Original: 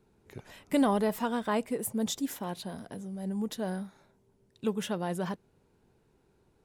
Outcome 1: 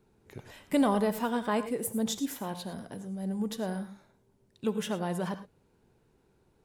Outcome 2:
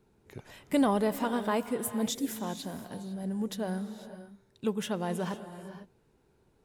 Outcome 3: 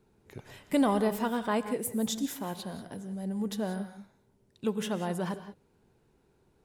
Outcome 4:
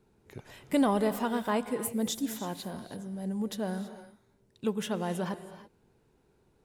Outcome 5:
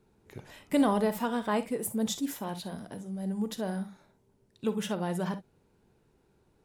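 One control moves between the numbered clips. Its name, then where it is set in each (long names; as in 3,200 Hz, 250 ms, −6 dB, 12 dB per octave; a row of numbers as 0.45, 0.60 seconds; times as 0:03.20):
reverb whose tail is shaped and stops, gate: 130, 530, 210, 350, 80 milliseconds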